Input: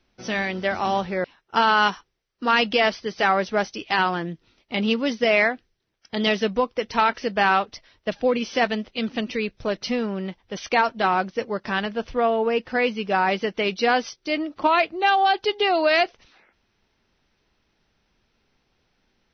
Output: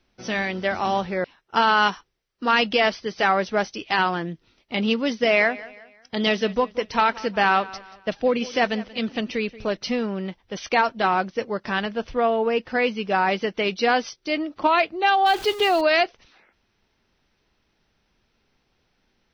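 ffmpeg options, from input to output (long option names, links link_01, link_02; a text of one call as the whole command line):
ffmpeg -i in.wav -filter_complex "[0:a]asettb=1/sr,asplit=3[link_01][link_02][link_03];[link_01]atrim=end=5.064[link_04];[link_02]atrim=start=5.06:end=9.69,asetpts=PTS-STARTPTS,afade=type=in:duration=0.004:curve=qsin,afade=type=out:start_time=4.626:duration=0.004:curve=qsin,aecho=1:1:181|362|543:0.112|0.0438|0.0171,atrim=end_sample=204183[link_05];[link_03]atrim=start=9.686[link_06];[link_04][link_05]acrossfade=duration=0.004:curve1=hsin:curve2=qsin[link_07];[link_07][link_06]acrossfade=duration=0.004:curve1=qsin:curve2=hsin,asettb=1/sr,asplit=3[link_08][link_09][link_10];[link_08]atrim=end=15.264[link_11];[link_09]atrim=start=15.26:end=15.81,asetpts=PTS-STARTPTS,afade=type=in:duration=0.004:curve=qsin,afade=type=out:start_time=0.546:duration=0.004:curve=qsin,aeval=exprs='val(0)+0.5*0.0299*sgn(val(0))':channel_layout=same[link_12];[link_10]atrim=start=15.806[link_13];[link_11][link_12]acrossfade=duration=0.004:curve1=hsin:curve2=qsin[link_14];[link_14][link_13]acrossfade=duration=0.004:curve1=qsin:curve2=hsin" out.wav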